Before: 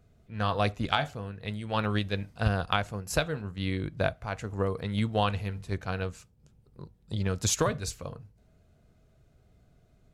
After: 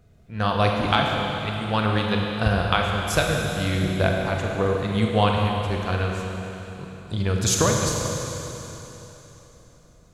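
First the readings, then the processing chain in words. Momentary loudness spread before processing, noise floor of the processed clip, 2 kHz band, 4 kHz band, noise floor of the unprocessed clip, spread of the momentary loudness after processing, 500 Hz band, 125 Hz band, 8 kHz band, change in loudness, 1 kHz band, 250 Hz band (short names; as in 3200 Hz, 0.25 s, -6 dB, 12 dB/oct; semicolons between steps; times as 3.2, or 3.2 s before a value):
11 LU, -52 dBFS, +8.0 dB, +8.0 dB, -63 dBFS, 15 LU, +8.0 dB, +7.5 dB, +8.0 dB, +7.5 dB, +8.0 dB, +8.0 dB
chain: Schroeder reverb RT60 3.5 s, combs from 33 ms, DRR 0 dB; gain +5 dB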